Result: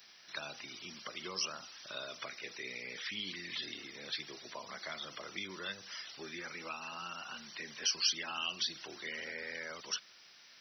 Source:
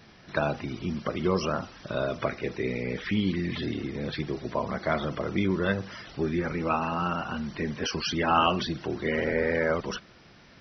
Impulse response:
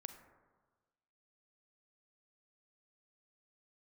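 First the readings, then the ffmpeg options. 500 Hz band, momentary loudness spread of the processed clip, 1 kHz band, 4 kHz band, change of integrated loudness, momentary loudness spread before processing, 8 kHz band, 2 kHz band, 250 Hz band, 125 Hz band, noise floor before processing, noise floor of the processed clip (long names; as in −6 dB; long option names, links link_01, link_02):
−20.5 dB, 11 LU, −17.0 dB, −0.5 dB, −10.5 dB, 7 LU, can't be measured, −9.0 dB, −23.5 dB, −27.0 dB, −54 dBFS, −59 dBFS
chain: -filter_complex "[0:a]aderivative,acrossover=split=280|3000[link_01][link_02][link_03];[link_02]acompressor=threshold=-49dB:ratio=5[link_04];[link_01][link_04][link_03]amix=inputs=3:normalize=0,volume=6.5dB"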